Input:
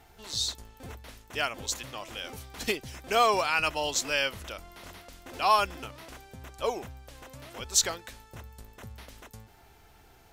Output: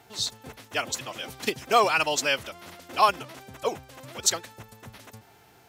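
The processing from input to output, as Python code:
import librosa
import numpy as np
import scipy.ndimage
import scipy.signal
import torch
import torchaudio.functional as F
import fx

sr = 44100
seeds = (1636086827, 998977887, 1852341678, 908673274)

y = scipy.signal.sosfilt(scipy.signal.butter(4, 100.0, 'highpass', fs=sr, output='sos'), x)
y = fx.stretch_vocoder(y, sr, factor=0.55)
y = y * 10.0 ** (4.5 / 20.0)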